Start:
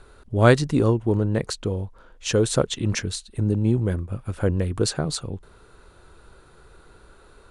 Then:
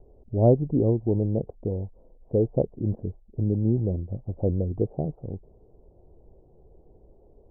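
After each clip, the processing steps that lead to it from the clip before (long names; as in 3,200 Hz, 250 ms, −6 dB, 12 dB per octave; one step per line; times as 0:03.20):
Butterworth low-pass 760 Hz 48 dB per octave
level −2.5 dB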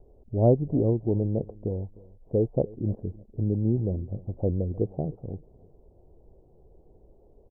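repeating echo 306 ms, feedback 23%, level −22 dB
level −1.5 dB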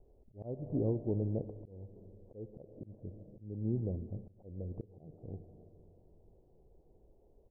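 four-comb reverb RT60 3.1 s, combs from 29 ms, DRR 14.5 dB
volume swells 364 ms
level −8.5 dB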